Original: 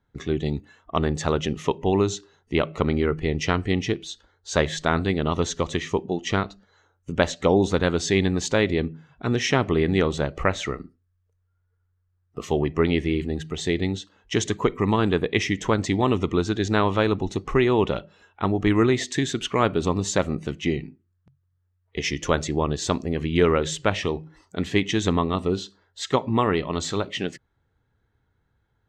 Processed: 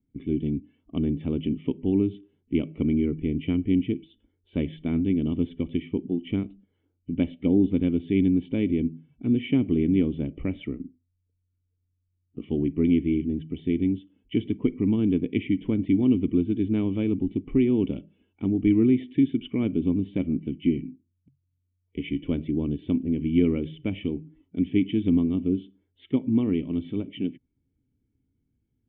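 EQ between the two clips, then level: cascade formant filter i; distance through air 310 m; +7.5 dB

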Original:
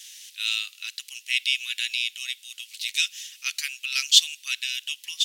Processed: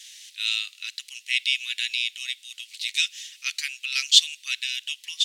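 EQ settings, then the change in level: graphic EQ 1/2/4/8 kHz +6/+9/+8/+7 dB; -10.0 dB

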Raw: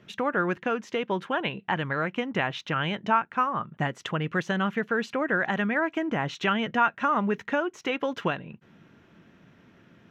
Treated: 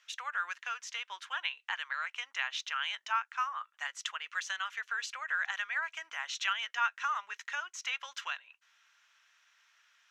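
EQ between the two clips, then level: high-pass 1.1 kHz 24 dB/octave; peaking EQ 6.6 kHz +14 dB 1.7 oct; -7.0 dB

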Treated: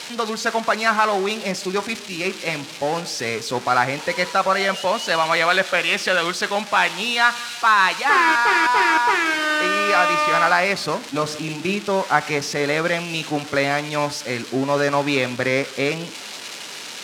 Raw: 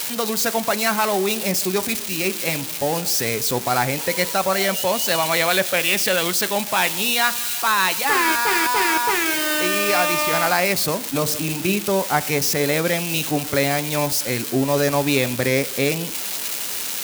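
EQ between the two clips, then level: dynamic bell 1.3 kHz, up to +7 dB, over -34 dBFS, Q 1.3; high-pass 150 Hz 6 dB/octave; low-pass 5.2 kHz 12 dB/octave; -1.0 dB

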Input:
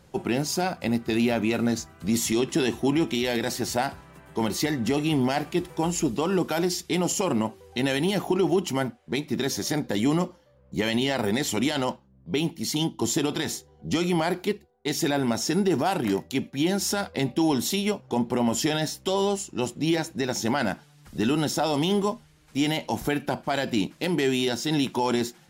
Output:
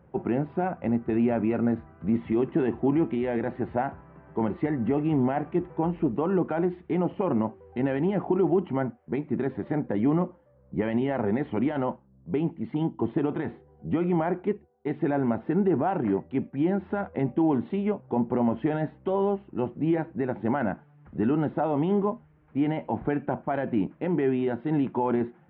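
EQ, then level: Gaussian low-pass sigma 5 samples; high-pass 53 Hz; 0.0 dB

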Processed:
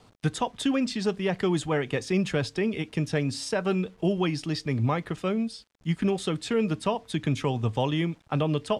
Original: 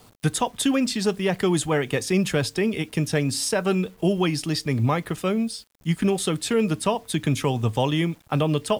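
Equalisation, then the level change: distance through air 73 m; -3.5 dB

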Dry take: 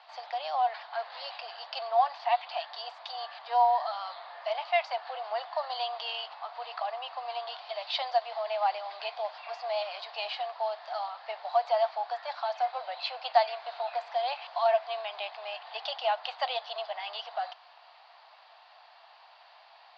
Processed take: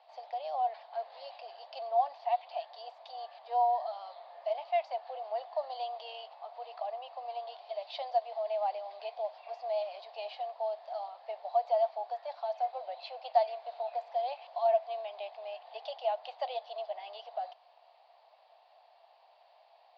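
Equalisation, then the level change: FFT filter 630 Hz 0 dB, 1.4 kHz -18 dB, 2.3 kHz -12 dB; 0.0 dB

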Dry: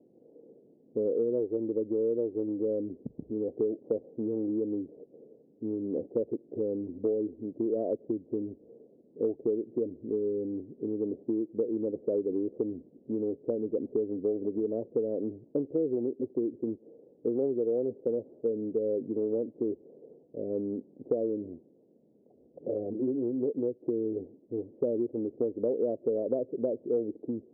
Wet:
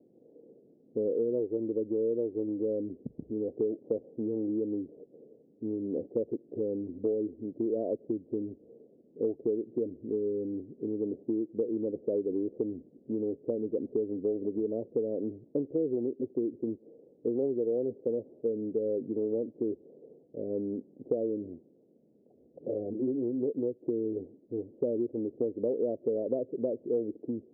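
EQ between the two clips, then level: low-pass 1 kHz 12 dB/octave; distance through air 340 m; 0.0 dB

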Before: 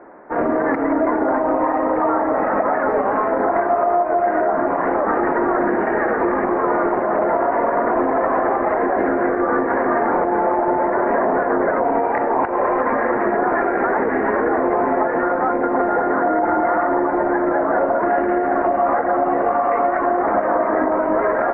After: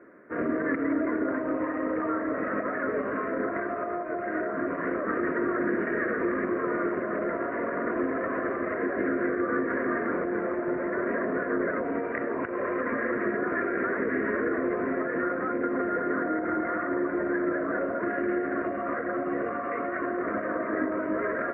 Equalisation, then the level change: high-pass 79 Hz 12 dB/octave; static phaser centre 2 kHz, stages 4; -5.0 dB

